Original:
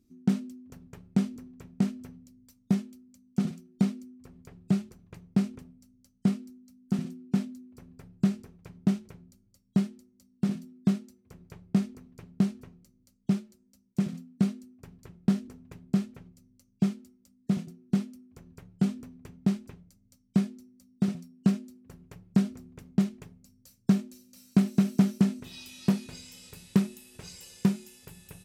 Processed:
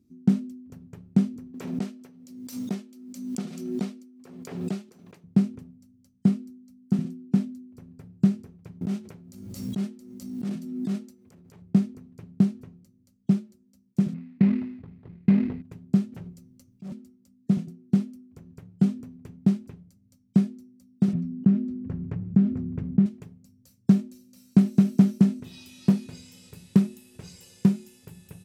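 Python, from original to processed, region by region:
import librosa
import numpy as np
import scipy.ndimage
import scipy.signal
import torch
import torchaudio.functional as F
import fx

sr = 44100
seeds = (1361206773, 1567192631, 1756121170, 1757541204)

y = fx.chain(x, sr, fx.highpass(hz=360.0, slope=12),
    fx.peak_eq(hz=4200.0, db=3.0, octaves=1.8),
    fx.pre_swell(db_per_s=45.0), at=(1.54, 5.24))
y = fx.chain(y, sr, fx.low_shelf(hz=230.0, db=-10.5),
    fx.transient(attack_db=-11, sustain_db=6),
    fx.pre_swell(db_per_s=41.0), at=(8.81, 11.62))
y = fx.chain(y, sr, fx.sample_hold(seeds[0], rate_hz=2300.0, jitter_pct=20),
    fx.air_absorb(metres=380.0),
    fx.sustainer(db_per_s=76.0), at=(14.14, 15.62))
y = fx.chain(y, sr, fx.hum_notches(base_hz=50, count=8),
    fx.over_compress(threshold_db=-37.0, ratio=-1.0),
    fx.clip_hard(threshold_db=-38.5), at=(16.12, 16.92))
y = fx.chain(y, sr, fx.lowpass(hz=1600.0, slope=12),
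    fx.peak_eq(hz=750.0, db=-7.5, octaves=2.4),
    fx.env_flatten(amount_pct=50), at=(21.13, 23.06))
y = scipy.signal.sosfilt(scipy.signal.butter(2, 85.0, 'highpass', fs=sr, output='sos'), y)
y = fx.low_shelf(y, sr, hz=430.0, db=10.0)
y = y * librosa.db_to_amplitude(-3.5)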